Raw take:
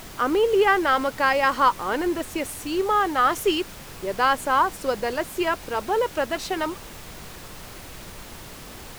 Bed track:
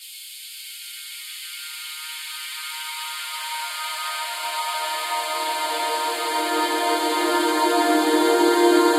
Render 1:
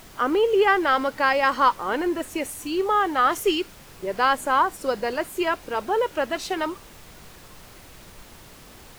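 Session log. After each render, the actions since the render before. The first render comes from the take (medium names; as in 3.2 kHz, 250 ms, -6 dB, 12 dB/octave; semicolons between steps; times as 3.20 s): noise print and reduce 6 dB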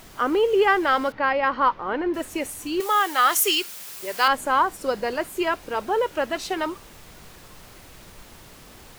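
1.12–2.14 s: distance through air 290 m; 2.80–4.28 s: tilt EQ +4 dB/octave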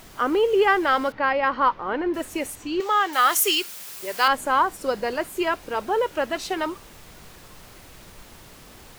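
2.55–3.13 s: boxcar filter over 4 samples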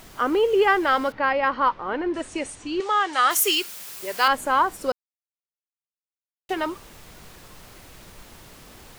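1.51–3.31 s: elliptic low-pass 9.2 kHz; 4.92–6.49 s: mute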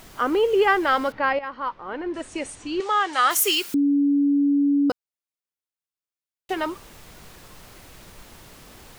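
1.39–2.58 s: fade in, from -12.5 dB; 3.74–4.90 s: bleep 284 Hz -16 dBFS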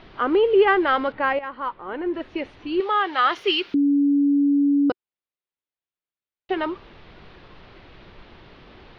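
inverse Chebyshev low-pass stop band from 7.3 kHz, stop band 40 dB; peaking EQ 370 Hz +4.5 dB 0.4 oct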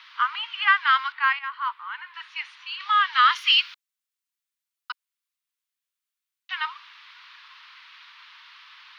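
steep high-pass 970 Hz 72 dB/octave; treble shelf 2.1 kHz +8.5 dB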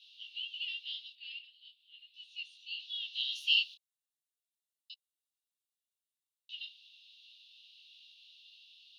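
rippled Chebyshev high-pass 2.7 kHz, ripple 6 dB; detune thickener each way 13 cents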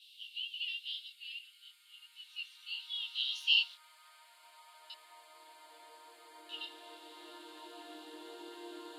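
add bed track -32.5 dB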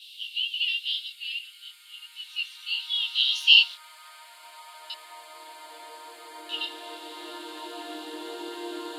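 trim +12 dB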